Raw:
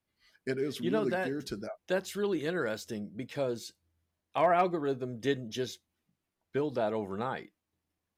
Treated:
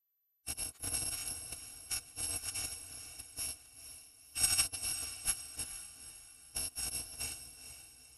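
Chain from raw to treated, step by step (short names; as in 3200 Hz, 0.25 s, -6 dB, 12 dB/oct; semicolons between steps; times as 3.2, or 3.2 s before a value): FFT order left unsorted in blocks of 128 samples; high shelf 10000 Hz +9 dB; expander -51 dBFS; power-law curve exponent 3; HPF 78 Hz 6 dB/oct; notch 7900 Hz, Q 13; in parallel at +0.5 dB: negative-ratio compressor -46 dBFS, ratio -1; on the sum: formant-preserving pitch shift -10.5 st; on a send: diffused feedback echo 0.463 s, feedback 43%, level -10 dB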